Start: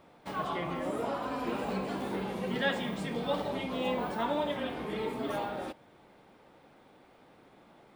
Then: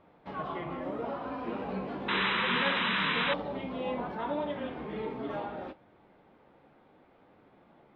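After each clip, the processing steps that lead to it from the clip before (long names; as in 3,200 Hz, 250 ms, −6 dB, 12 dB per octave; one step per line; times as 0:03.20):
flanger 0.68 Hz, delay 9.4 ms, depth 5.7 ms, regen −53%
sound drawn into the spectrogram noise, 0:02.08–0:03.34, 880–4,000 Hz −29 dBFS
high-frequency loss of the air 310 metres
level +3 dB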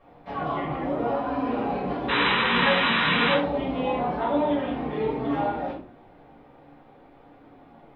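rectangular room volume 290 cubic metres, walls furnished, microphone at 5.8 metres
level −2.5 dB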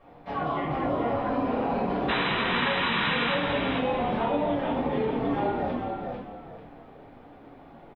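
downward compressor, threshold −25 dBFS, peak gain reduction 8.5 dB
on a send: echo with shifted repeats 444 ms, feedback 30%, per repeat −45 Hz, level −4.5 dB
on the sum: level +1 dB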